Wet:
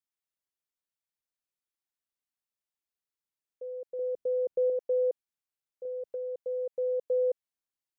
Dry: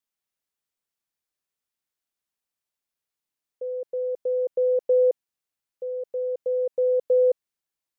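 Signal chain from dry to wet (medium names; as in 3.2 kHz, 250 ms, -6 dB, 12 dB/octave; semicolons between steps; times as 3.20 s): 3.99–4.70 s: bass shelf 410 Hz +9.5 dB; 5.85–6.36 s: three bands compressed up and down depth 100%; trim -8 dB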